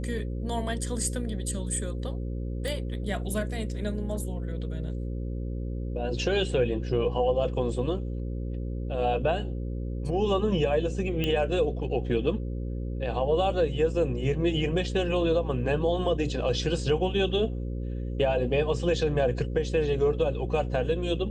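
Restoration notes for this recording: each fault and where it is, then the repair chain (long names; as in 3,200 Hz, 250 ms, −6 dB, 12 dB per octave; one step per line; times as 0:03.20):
mains buzz 60 Hz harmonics 9 −32 dBFS
0:02.68: click
0:11.24: click −15 dBFS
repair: click removal
hum removal 60 Hz, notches 9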